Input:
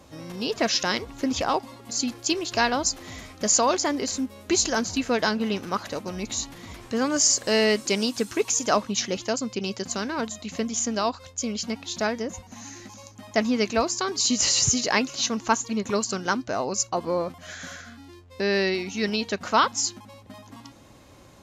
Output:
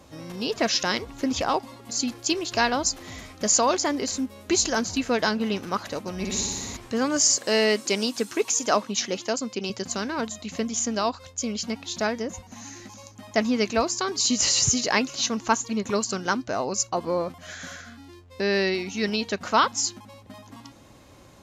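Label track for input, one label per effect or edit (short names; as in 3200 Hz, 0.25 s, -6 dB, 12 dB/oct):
6.140000	6.770000	flutter echo walls apart 10.1 m, dies away in 1.5 s
7.370000	9.700000	HPF 190 Hz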